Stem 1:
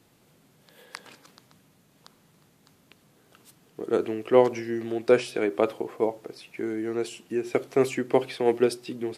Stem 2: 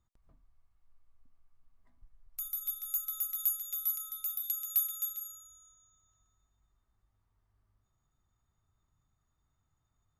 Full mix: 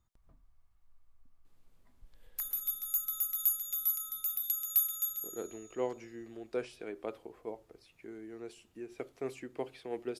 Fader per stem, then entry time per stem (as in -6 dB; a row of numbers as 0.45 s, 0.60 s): -16.5 dB, +1.5 dB; 1.45 s, 0.00 s